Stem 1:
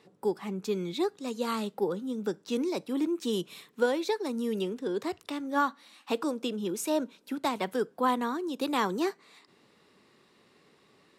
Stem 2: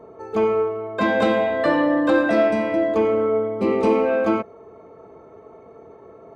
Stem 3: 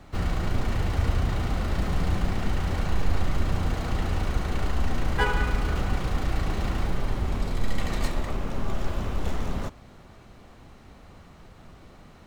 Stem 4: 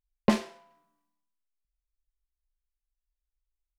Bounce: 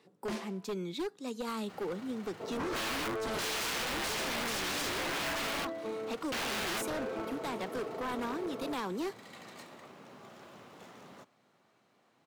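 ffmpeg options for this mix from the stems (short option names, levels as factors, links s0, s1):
-filter_complex "[0:a]volume=0.631[s0];[1:a]adelay=2400,volume=1.41,asplit=3[s1][s2][s3];[s1]atrim=end=5.65,asetpts=PTS-STARTPTS,afade=t=out:st=5.646:d=0.004:c=hsin[s4];[s2]atrim=start=5.65:end=6.32,asetpts=PTS-STARTPTS,volume=0[s5];[s3]atrim=start=6.32,asetpts=PTS-STARTPTS,afade=t=in:d=0.004:c=hsin[s6];[s4][s5][s6]concat=n=3:v=0:a=1,asplit=2[s7][s8];[s8]volume=0.075[s9];[2:a]highpass=f=370:p=1,adelay=1550,volume=0.178[s10];[3:a]aeval=exprs='0.133*(abs(mod(val(0)/0.133+3,4)-2)-1)':c=same,volume=0.562[s11];[s0][s11]amix=inputs=2:normalize=0,alimiter=level_in=1.26:limit=0.0631:level=0:latency=1:release=69,volume=0.794,volume=1[s12];[s7][s10]amix=inputs=2:normalize=0,aeval=exprs='(mod(7.5*val(0)+1,2)-1)/7.5':c=same,acompressor=threshold=0.0316:ratio=10,volume=1[s13];[s9]aecho=0:1:488:1[s14];[s12][s13][s14]amix=inputs=3:normalize=0,highpass=f=120:w=0.5412,highpass=f=120:w=1.3066,aeval=exprs='0.0316*(abs(mod(val(0)/0.0316+3,4)-2)-1)':c=same"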